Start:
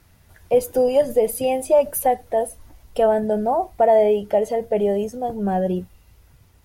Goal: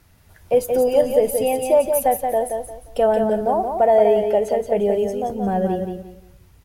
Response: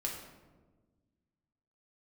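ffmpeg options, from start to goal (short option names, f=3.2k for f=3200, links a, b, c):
-af "aecho=1:1:176|352|528|704:0.531|0.143|0.0387|0.0104"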